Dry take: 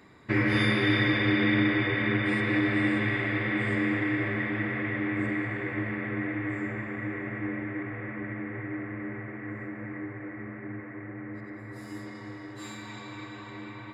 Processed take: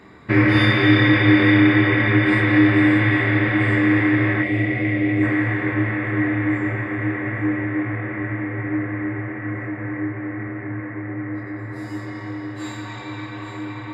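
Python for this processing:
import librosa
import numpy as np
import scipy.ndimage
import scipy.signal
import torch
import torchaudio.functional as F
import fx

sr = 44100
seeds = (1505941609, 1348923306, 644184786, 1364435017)

y = fx.high_shelf(x, sr, hz=4800.0, db=-8.5)
y = fx.doubler(y, sr, ms=26.0, db=-4.5)
y = fx.echo_feedback(y, sr, ms=840, feedback_pct=51, wet_db=-12.5)
y = fx.spec_box(y, sr, start_s=4.43, length_s=0.8, low_hz=770.0, high_hz=1900.0, gain_db=-11)
y = y * librosa.db_to_amplitude(8.0)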